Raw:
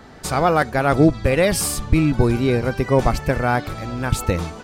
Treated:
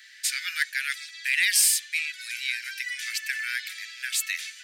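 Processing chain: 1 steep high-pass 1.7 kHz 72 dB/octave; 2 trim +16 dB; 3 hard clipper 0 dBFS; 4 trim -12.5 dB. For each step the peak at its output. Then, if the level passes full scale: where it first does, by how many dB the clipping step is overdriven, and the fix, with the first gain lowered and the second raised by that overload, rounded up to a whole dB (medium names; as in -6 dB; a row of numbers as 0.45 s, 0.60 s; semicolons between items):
-10.0 dBFS, +6.0 dBFS, 0.0 dBFS, -12.5 dBFS; step 2, 6.0 dB; step 2 +10 dB, step 4 -6.5 dB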